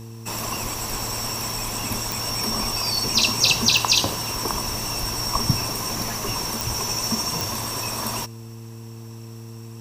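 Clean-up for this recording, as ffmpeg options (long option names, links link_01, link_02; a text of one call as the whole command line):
ffmpeg -i in.wav -af "adeclick=threshold=4,bandreject=frequency=113.7:width_type=h:width=4,bandreject=frequency=227.4:width_type=h:width=4,bandreject=frequency=341.1:width_type=h:width=4,bandreject=frequency=454.8:width_type=h:width=4" out.wav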